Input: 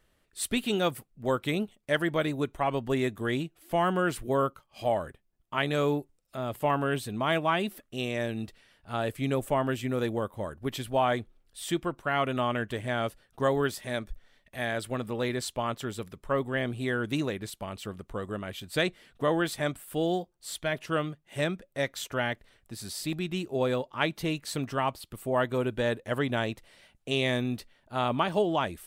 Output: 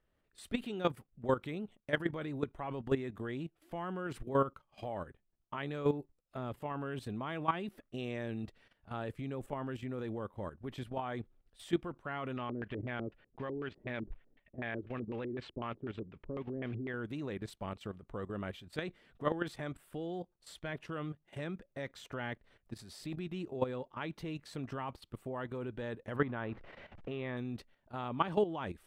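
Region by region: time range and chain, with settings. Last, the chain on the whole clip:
12.37–16.94 s: block-companded coder 5-bit + compression 3:1, threshold -31 dBFS + LFO low-pass square 4 Hz 350–2600 Hz
26.16–27.37 s: jump at every zero crossing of -42.5 dBFS + low-pass 2.4 kHz + dynamic bell 1.2 kHz, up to +6 dB, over -46 dBFS, Q 1.4
whole clip: low-pass 1.8 kHz 6 dB/octave; dynamic bell 640 Hz, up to -6 dB, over -44 dBFS, Q 4.7; level held to a coarse grid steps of 13 dB

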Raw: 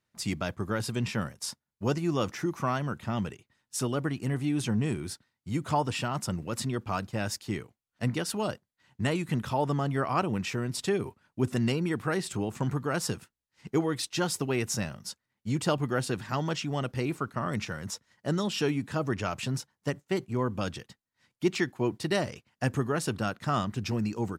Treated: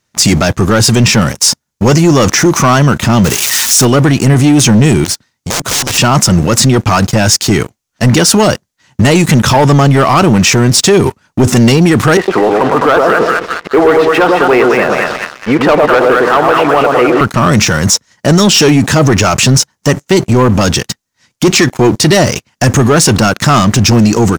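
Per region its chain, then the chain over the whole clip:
3.24–3.85 s: zero-crossing glitches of -27 dBFS + treble shelf 4 kHz -10 dB
5.04–5.98 s: integer overflow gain 28.5 dB + compression 5:1, threshold -46 dBFS
12.17–17.21 s: cabinet simulation 440–2200 Hz, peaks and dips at 470 Hz +5 dB, 690 Hz +3 dB, 1.2 kHz +4 dB + two-band feedback delay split 1.1 kHz, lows 107 ms, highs 206 ms, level -4 dB
whole clip: peaking EQ 6.2 kHz +9 dB 0.7 oct; waveshaping leveller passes 3; loudness maximiser +21.5 dB; trim -1 dB

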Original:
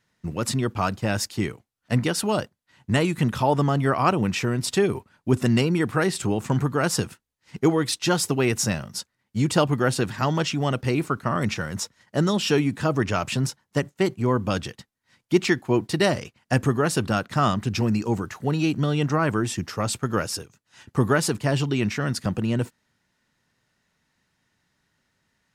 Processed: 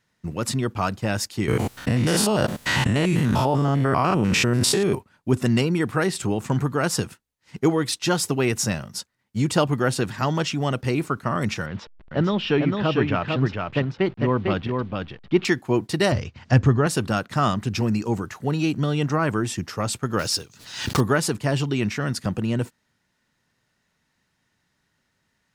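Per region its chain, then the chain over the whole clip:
1.48–4.95 s: spectrogram pixelated in time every 100 ms + level flattener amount 100%
11.66–15.45 s: send-on-delta sampling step -42 dBFS + low-pass 3.6 kHz 24 dB/octave + delay 450 ms -4 dB
16.12–16.87 s: peaking EQ 83 Hz +13.5 dB 1.3 oct + upward compressor, threshold -26 dBFS + low-pass 6 kHz 24 dB/octave
20.19–21.01 s: block-companded coder 5-bit + peaking EQ 4.3 kHz +9.5 dB 1.1 oct + swell ahead of each attack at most 78 dB/s
whole clip: none

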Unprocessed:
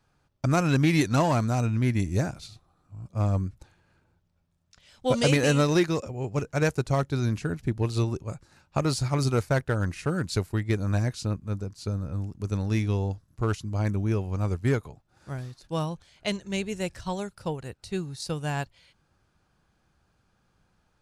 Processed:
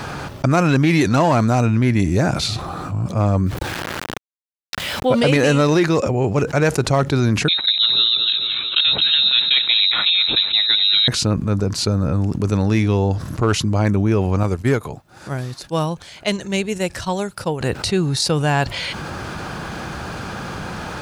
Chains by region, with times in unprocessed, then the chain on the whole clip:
3.46–5.32 s: peaking EQ 6.5 kHz -14 dB 0.52 oct + word length cut 10-bit, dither none
7.48–11.08 s: frequency inversion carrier 3.9 kHz + feedback delay 221 ms, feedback 38%, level -13.5 dB
14.43–17.61 s: treble shelf 8.1 kHz +10 dB + upward expansion 2.5:1, over -38 dBFS
whole clip: high-pass 160 Hz 6 dB/octave; treble shelf 5.1 kHz -8 dB; level flattener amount 70%; trim +6 dB

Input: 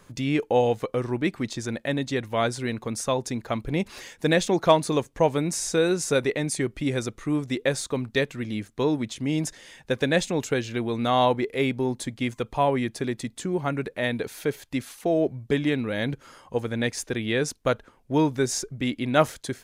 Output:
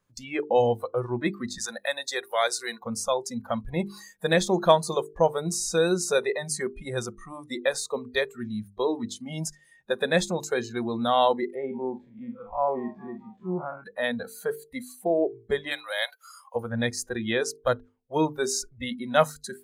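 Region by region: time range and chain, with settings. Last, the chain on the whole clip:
1.58–2.80 s: high-pass 370 Hz + treble shelf 2.7 kHz +8 dB + band-stop 3.1 kHz
11.55–13.84 s: spectral blur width 100 ms + low-pass 1.9 kHz + frequency-shifting echo 210 ms, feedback 64%, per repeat +74 Hz, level -22 dB
15.71–16.56 s: steep high-pass 550 Hz 48 dB/octave + treble shelf 2.8 kHz +10.5 dB
whole clip: spectral noise reduction 22 dB; peaking EQ 110 Hz +3.5 dB 1 oct; hum notches 50/100/150/200/250/300/350/400/450 Hz

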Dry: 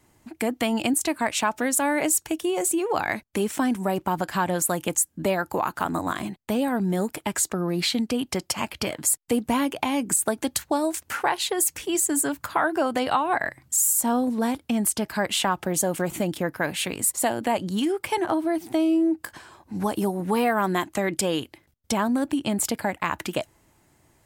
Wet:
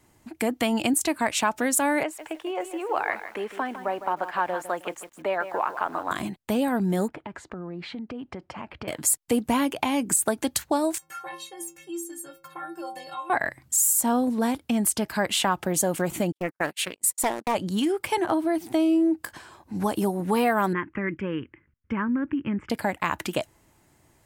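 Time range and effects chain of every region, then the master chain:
2.03–6.11 s: three-band isolator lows -20 dB, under 400 Hz, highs -22 dB, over 2.9 kHz + bit-crushed delay 156 ms, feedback 35%, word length 8-bit, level -11 dB
7.08–8.88 s: low-pass 1.8 kHz + compression 4:1, threshold -34 dBFS
10.98–13.30 s: inharmonic resonator 160 Hz, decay 0.57 s, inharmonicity 0.03 + three bands compressed up and down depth 40%
16.32–17.55 s: gate -30 dBFS, range -52 dB + bass shelf 250 Hz -11.5 dB + loudspeaker Doppler distortion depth 0.44 ms
20.73–22.70 s: low-pass 2.6 kHz 24 dB/octave + static phaser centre 1.7 kHz, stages 4
whole clip: none

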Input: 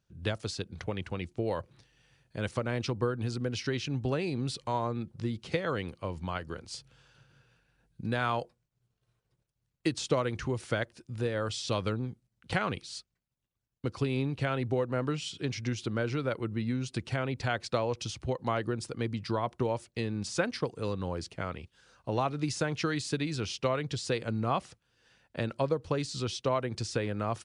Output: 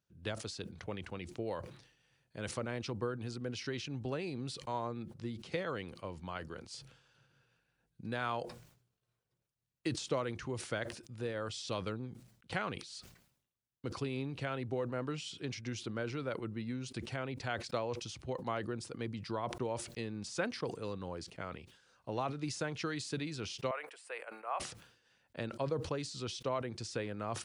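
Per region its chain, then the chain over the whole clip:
23.71–24.60 s: expander -38 dBFS + high-pass 600 Hz 24 dB/octave + high-order bell 4.8 kHz -16 dB 1.3 oct
whole clip: bass shelf 80 Hz -11 dB; decay stretcher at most 86 dB/s; trim -6.5 dB

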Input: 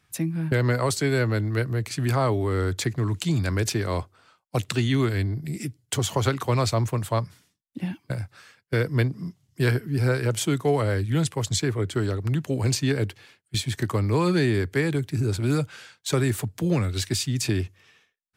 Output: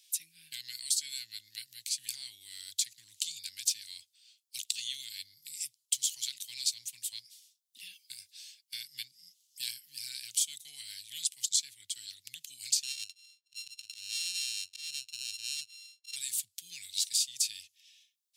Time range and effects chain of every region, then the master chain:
12.83–16.16 s: sorted samples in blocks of 32 samples + slow attack 144 ms + distance through air 63 m
whole clip: inverse Chebyshev high-pass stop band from 1.3 kHz, stop band 50 dB; dynamic bell 8.7 kHz, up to +4 dB, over -45 dBFS, Q 0.88; three bands compressed up and down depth 40%

